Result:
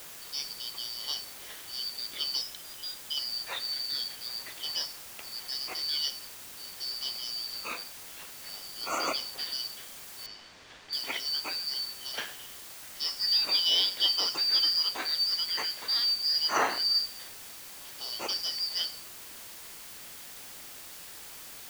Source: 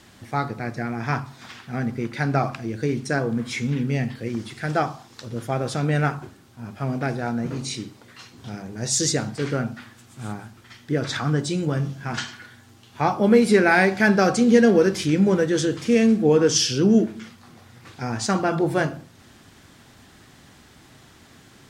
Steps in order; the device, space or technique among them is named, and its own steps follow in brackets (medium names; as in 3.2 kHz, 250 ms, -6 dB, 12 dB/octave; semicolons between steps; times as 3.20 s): 2.41–3.17 s: Chebyshev band-pass 410–2900 Hz, order 4; split-band scrambled radio (four frequency bands reordered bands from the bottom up 4321; band-pass 330–3000 Hz; white noise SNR 12 dB); 10.26–10.93 s: distance through air 140 m; trim -2.5 dB